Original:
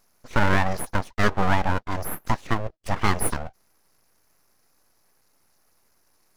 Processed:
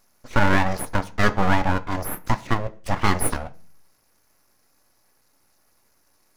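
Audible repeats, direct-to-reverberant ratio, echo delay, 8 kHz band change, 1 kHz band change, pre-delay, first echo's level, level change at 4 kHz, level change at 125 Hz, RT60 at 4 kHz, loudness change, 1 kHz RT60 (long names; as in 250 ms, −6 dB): no echo audible, 9.5 dB, no echo audible, +1.5 dB, +1.5 dB, 3 ms, no echo audible, +2.0 dB, +1.5 dB, 0.50 s, +2.0 dB, 0.40 s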